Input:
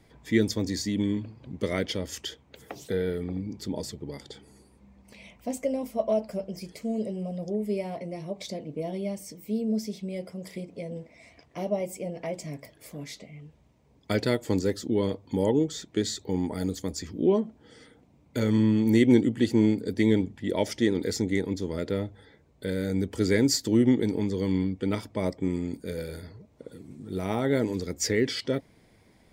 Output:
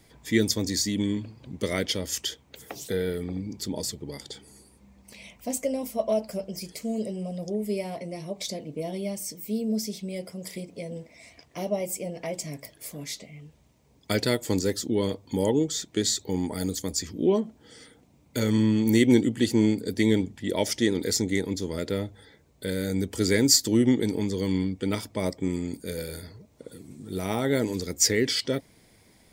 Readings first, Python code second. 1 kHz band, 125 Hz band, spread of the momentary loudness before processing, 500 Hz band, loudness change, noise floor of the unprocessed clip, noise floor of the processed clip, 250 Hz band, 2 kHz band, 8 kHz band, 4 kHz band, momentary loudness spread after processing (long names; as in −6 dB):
+0.5 dB, 0.0 dB, 17 LU, 0.0 dB, +1.0 dB, −60 dBFS, −59 dBFS, 0.0 dB, +2.5 dB, +8.5 dB, +6.0 dB, 16 LU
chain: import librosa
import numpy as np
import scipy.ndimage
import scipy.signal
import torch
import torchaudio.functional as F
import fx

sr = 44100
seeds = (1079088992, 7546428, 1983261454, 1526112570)

y = fx.high_shelf(x, sr, hz=4000.0, db=11.5)